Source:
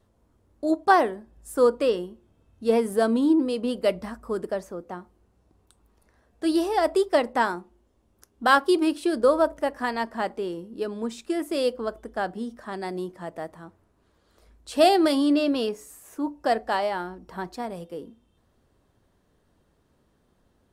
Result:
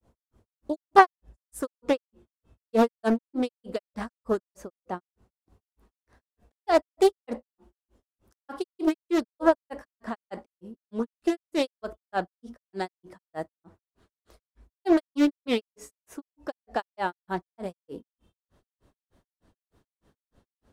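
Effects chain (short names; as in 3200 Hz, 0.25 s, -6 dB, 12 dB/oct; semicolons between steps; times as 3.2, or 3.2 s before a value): grains 0.159 s, grains 3.3/s, pitch spread up and down by 0 st; Doppler distortion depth 0.43 ms; gain +4 dB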